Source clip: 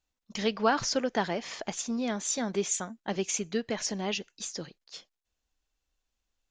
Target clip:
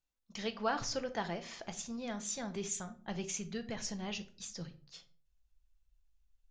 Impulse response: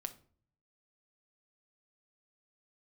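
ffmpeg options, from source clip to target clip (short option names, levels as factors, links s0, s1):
-filter_complex "[1:a]atrim=start_sample=2205[s0];[0:a][s0]afir=irnorm=-1:irlink=0,asubboost=boost=8.5:cutoff=110,volume=0.531"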